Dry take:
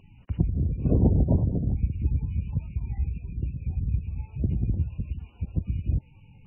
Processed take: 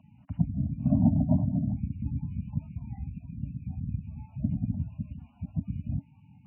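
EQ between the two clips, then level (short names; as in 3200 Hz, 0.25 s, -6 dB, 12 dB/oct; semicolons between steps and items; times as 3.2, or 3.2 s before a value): HPF 160 Hz 12 dB/oct; Chebyshev band-stop 280–600 Hz, order 5; tilt shelf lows +10 dB, about 1500 Hz; -5.5 dB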